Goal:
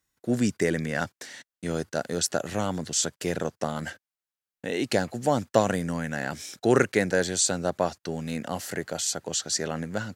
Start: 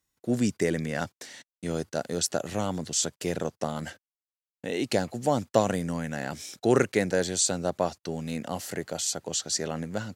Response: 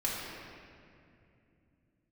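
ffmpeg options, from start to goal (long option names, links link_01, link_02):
-af "equalizer=frequency=1600:width_type=o:width=0.62:gain=4.5,volume=1dB"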